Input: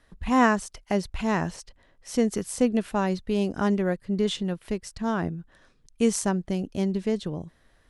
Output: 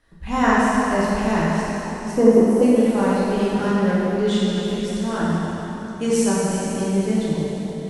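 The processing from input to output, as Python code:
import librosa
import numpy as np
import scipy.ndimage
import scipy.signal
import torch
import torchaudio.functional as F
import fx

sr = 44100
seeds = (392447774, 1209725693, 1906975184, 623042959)

y = fx.reverse_delay_fb(x, sr, ms=235, feedback_pct=61, wet_db=-12.0)
y = fx.graphic_eq(y, sr, hz=(250, 500, 1000, 2000, 4000, 8000), db=(4, 7, 11, -4, -12, -12), at=(2.11, 2.62))
y = fx.rev_plate(y, sr, seeds[0], rt60_s=3.3, hf_ratio=0.85, predelay_ms=0, drr_db=-8.5)
y = y * 10.0 ** (-3.5 / 20.0)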